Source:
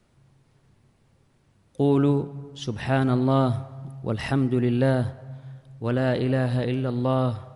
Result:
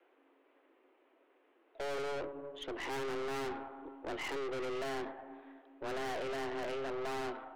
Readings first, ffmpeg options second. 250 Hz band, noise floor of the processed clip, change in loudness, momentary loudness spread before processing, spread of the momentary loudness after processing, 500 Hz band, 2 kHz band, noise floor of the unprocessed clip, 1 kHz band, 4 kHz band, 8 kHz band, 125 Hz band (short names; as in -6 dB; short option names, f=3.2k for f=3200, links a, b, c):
-21.5 dB, -71 dBFS, -15.5 dB, 14 LU, 9 LU, -11.5 dB, -7.5 dB, -63 dBFS, -9.0 dB, -7.0 dB, n/a, -32.0 dB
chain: -af "highpass=f=200:t=q:w=0.5412,highpass=f=200:t=q:w=1.307,lowpass=f=2.9k:t=q:w=0.5176,lowpass=f=2.9k:t=q:w=0.7071,lowpass=f=2.9k:t=q:w=1.932,afreqshift=140,aeval=exprs='(tanh(70.8*val(0)+0.4)-tanh(0.4))/70.8':c=same"